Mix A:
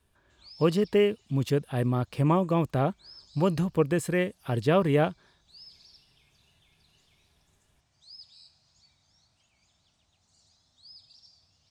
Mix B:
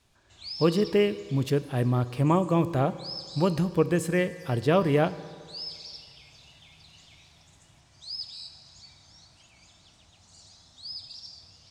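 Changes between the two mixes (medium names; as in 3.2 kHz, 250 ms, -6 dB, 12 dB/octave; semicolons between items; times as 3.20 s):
background +11.0 dB; reverb: on, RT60 2.2 s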